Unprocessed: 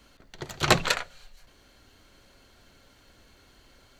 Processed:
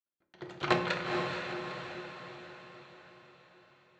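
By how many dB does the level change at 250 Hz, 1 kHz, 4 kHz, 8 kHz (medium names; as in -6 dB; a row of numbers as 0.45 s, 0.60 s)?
-1.0 dB, -3.5 dB, -9.5 dB, -20.0 dB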